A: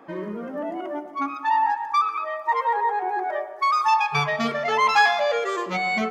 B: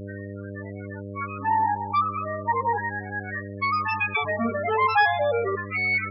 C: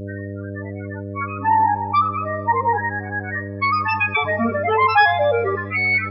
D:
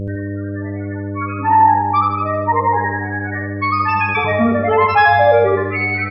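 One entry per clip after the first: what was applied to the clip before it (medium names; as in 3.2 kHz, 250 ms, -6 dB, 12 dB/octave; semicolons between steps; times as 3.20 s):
LFO high-pass square 0.36 Hz 280–1700 Hz; mains buzz 100 Hz, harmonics 6, -33 dBFS -3 dB/octave; loudest bins only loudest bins 16; trim -2.5 dB
two-slope reverb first 0.47 s, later 4.3 s, from -18 dB, DRR 18 dB; trim +5.5 dB
tilt EQ -2 dB/octave; on a send: feedback delay 77 ms, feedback 56%, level -4 dB; on the sum: trim +1.5 dB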